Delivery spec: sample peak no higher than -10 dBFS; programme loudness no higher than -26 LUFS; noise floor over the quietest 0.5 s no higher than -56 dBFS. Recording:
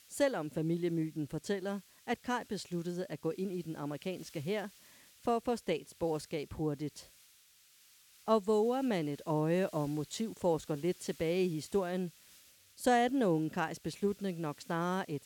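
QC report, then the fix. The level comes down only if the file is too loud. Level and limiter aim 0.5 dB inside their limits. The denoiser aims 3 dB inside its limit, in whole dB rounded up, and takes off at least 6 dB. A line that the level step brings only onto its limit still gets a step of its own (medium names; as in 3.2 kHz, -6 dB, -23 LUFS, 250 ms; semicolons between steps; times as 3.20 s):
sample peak -16.0 dBFS: pass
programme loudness -35.0 LUFS: pass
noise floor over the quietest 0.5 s -64 dBFS: pass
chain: none needed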